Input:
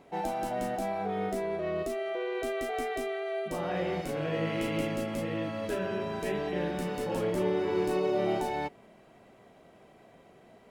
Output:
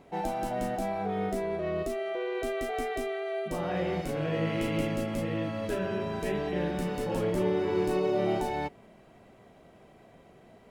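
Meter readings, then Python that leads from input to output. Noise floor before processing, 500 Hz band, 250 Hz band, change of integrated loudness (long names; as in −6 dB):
−58 dBFS, +0.5 dB, +2.0 dB, +1.0 dB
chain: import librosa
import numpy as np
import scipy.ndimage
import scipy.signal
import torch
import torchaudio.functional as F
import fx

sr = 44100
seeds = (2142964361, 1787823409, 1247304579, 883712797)

y = fx.low_shelf(x, sr, hz=140.0, db=7.5)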